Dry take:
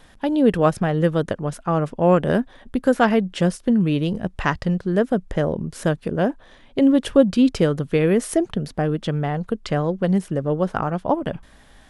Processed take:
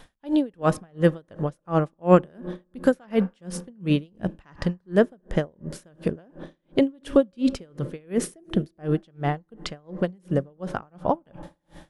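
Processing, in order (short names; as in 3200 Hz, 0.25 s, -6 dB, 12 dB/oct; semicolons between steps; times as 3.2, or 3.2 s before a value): reverb RT60 2.4 s, pre-delay 3 ms, DRR 19 dB; dB-linear tremolo 2.8 Hz, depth 37 dB; gain +2 dB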